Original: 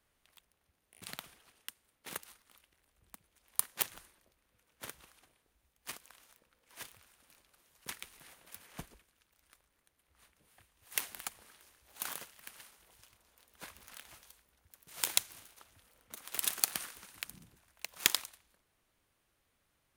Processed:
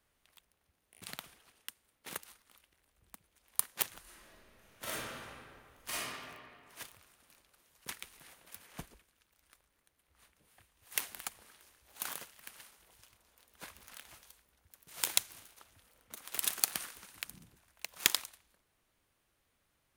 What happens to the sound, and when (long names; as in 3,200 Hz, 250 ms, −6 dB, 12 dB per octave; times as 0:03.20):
0:04.02–0:06.03: thrown reverb, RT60 2.1 s, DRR −10.5 dB